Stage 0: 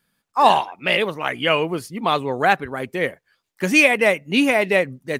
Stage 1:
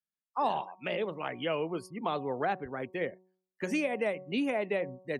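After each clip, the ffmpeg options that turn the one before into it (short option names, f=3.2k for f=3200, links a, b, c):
-filter_complex "[0:a]afftdn=nr=24:nf=-38,bandreject=f=185.4:t=h:w=4,bandreject=f=370.8:t=h:w=4,bandreject=f=556.2:t=h:w=4,bandreject=f=741.6:t=h:w=4,bandreject=f=927:t=h:w=4,bandreject=f=1.1124k:t=h:w=4,acrossover=split=220|860[a][b][c];[a]acompressor=threshold=-38dB:ratio=4[d];[b]acompressor=threshold=-20dB:ratio=4[e];[c]acompressor=threshold=-30dB:ratio=4[f];[d][e][f]amix=inputs=3:normalize=0,volume=-8.5dB"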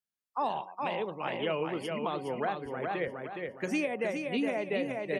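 -af "aecho=1:1:415|830|1245|1660|2075:0.596|0.22|0.0815|0.0302|0.0112,alimiter=limit=-21dB:level=0:latency=1:release=448"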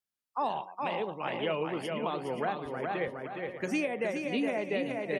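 -af "aecho=1:1:528:0.237"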